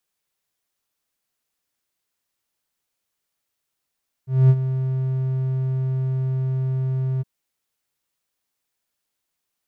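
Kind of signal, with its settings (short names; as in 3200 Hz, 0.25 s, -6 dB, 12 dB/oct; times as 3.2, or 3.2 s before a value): ADSR triangle 131 Hz, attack 0.226 s, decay 52 ms, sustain -11.5 dB, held 2.94 s, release 25 ms -6.5 dBFS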